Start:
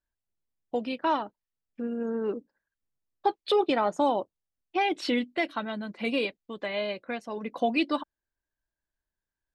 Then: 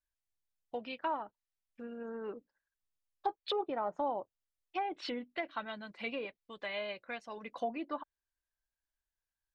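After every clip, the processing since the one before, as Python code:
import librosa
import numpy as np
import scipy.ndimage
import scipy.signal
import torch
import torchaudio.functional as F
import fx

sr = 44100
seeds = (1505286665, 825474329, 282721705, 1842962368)

y = fx.env_lowpass_down(x, sr, base_hz=980.0, full_db=-22.0)
y = fx.peak_eq(y, sr, hz=260.0, db=-10.5, octaves=2.4)
y = y * 10.0 ** (-3.5 / 20.0)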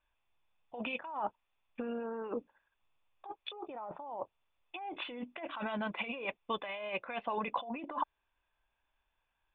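y = fx.over_compress(x, sr, threshold_db=-47.0, ratio=-1.0)
y = scipy.signal.sosfilt(scipy.signal.cheby1(6, 9, 3600.0, 'lowpass', fs=sr, output='sos'), y)
y = y * 10.0 ** (12.5 / 20.0)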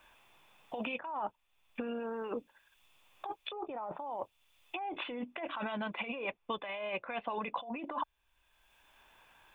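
y = fx.band_squash(x, sr, depth_pct=70)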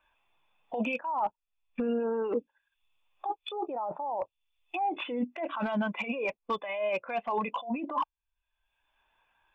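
y = 10.0 ** (-29.5 / 20.0) * (np.abs((x / 10.0 ** (-29.5 / 20.0) + 3.0) % 4.0 - 2.0) - 1.0)
y = fx.spectral_expand(y, sr, expansion=1.5)
y = y * 10.0 ** (9.0 / 20.0)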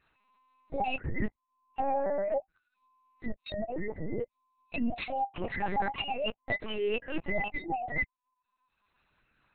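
y = fx.band_invert(x, sr, width_hz=1000)
y = fx.lpc_vocoder(y, sr, seeds[0], excitation='pitch_kept', order=8)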